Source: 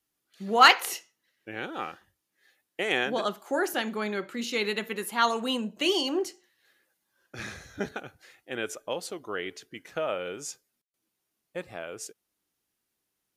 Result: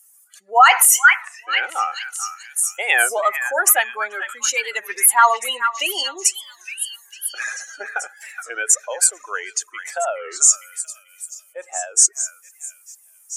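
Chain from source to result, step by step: spectral contrast enhancement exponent 1.9; high-pass 750 Hz 24 dB/octave; resonant high shelf 5.7 kHz +14 dB, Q 3; on a send: repeats whose band climbs or falls 437 ms, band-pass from 1.7 kHz, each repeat 0.7 oct, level -7 dB; on the sum: loudness maximiser +16 dB; warped record 33 1/3 rpm, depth 160 cents; trim -1 dB

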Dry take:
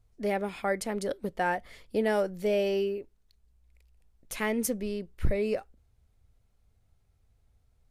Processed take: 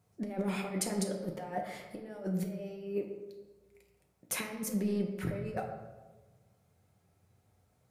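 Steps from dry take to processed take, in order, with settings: high-pass 110 Hz 24 dB/octave; peaking EQ 3.5 kHz -5.5 dB 1.3 oct; compressor with a negative ratio -35 dBFS, ratio -0.5; reverberation RT60 1.3 s, pre-delay 5 ms, DRR 1 dB; trim -2 dB

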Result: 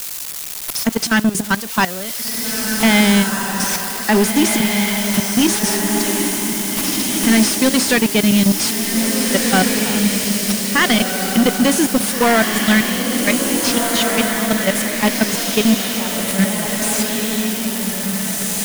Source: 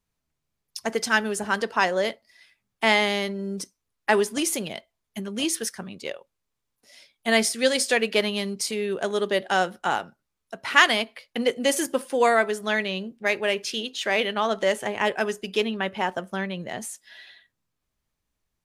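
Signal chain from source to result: zero-crossing glitches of -12 dBFS; resonant low shelf 320 Hz +9 dB, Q 1.5; level held to a coarse grid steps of 19 dB; waveshaping leveller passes 3; on a send: echo that smears into a reverb 1799 ms, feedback 41%, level -3 dB; on the sum: slew-rate limiter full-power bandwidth 1.1 kHz

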